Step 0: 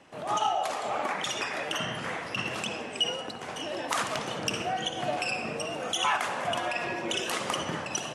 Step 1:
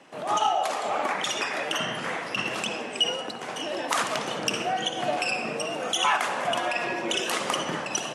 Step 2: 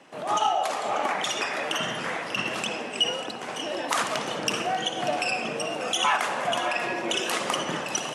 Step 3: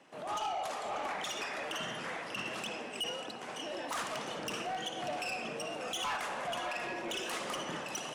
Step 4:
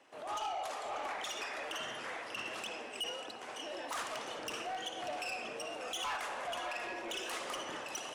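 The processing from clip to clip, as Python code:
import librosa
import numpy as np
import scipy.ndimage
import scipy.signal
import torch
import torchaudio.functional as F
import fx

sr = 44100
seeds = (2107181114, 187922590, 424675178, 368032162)

y1 = scipy.signal.sosfilt(scipy.signal.butter(2, 170.0, 'highpass', fs=sr, output='sos'), x)
y1 = y1 * 10.0 ** (3.5 / 20.0)
y2 = y1 + 10.0 ** (-13.0 / 20.0) * np.pad(y1, (int(590 * sr / 1000.0), 0))[:len(y1)]
y3 = 10.0 ** (-23.0 / 20.0) * np.tanh(y2 / 10.0 ** (-23.0 / 20.0))
y3 = y3 * 10.0 ** (-8.0 / 20.0)
y4 = fx.peak_eq(y3, sr, hz=170.0, db=-12.5, octaves=0.9)
y4 = y4 * 10.0 ** (-2.0 / 20.0)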